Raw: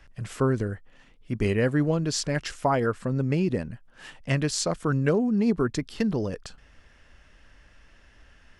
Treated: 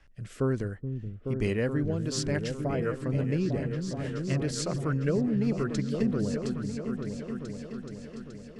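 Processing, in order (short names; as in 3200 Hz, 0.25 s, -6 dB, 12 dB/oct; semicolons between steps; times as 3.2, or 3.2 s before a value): rotary speaker horn 1.2 Hz; repeats that get brighter 0.426 s, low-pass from 200 Hz, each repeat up 2 oct, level -3 dB; gain -3.5 dB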